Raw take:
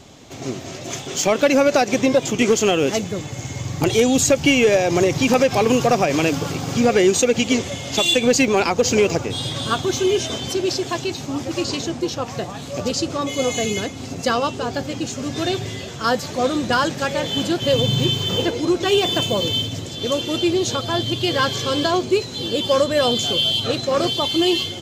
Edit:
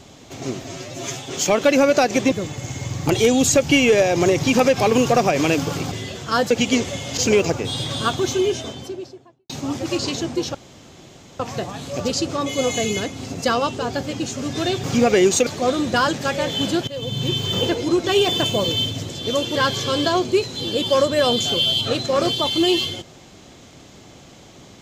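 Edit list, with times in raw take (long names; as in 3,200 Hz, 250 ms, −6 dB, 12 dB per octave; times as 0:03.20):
0:00.63–0:01.08: time-stretch 1.5×
0:02.09–0:03.06: remove
0:06.66–0:07.29: swap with 0:15.64–0:16.23
0:07.96–0:08.83: remove
0:09.79–0:11.15: fade out and dull
0:12.20: splice in room tone 0.85 s
0:17.64–0:18.30: fade in, from −18.5 dB
0:20.32–0:21.34: remove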